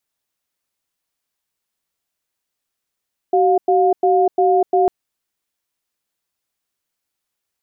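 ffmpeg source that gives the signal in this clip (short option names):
-f lavfi -i "aevalsrc='0.2*(sin(2*PI*378*t)+sin(2*PI*711*t))*clip(min(mod(t,0.35),0.25-mod(t,0.35))/0.005,0,1)':d=1.55:s=44100"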